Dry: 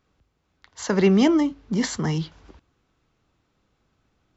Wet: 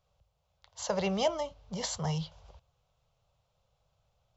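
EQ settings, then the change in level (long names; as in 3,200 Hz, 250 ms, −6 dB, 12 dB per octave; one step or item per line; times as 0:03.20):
drawn EQ curve 140 Hz 0 dB, 300 Hz −27 dB, 560 Hz +5 dB, 950 Hz −1 dB, 1,800 Hz −12 dB, 3,000 Hz −1 dB
−3.5 dB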